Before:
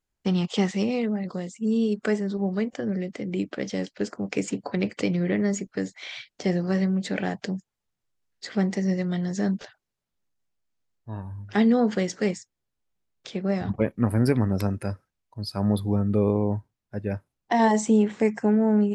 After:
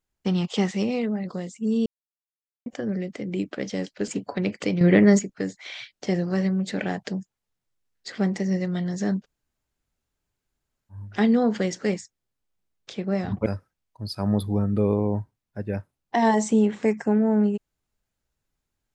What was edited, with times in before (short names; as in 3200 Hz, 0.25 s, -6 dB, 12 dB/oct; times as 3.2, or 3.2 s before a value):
1.86–2.66 mute
4.08–4.45 cut
5.18–5.56 gain +8.5 dB
9.58–11.31 room tone, crossfade 0.10 s
13.83–14.83 cut